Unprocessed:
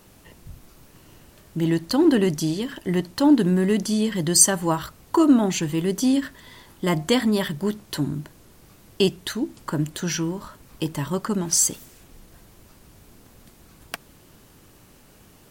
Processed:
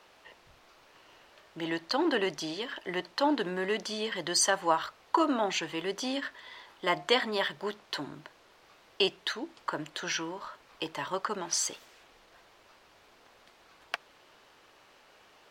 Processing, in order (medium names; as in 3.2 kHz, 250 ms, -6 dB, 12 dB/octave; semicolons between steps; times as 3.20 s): three-band isolator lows -23 dB, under 470 Hz, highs -21 dB, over 5 kHz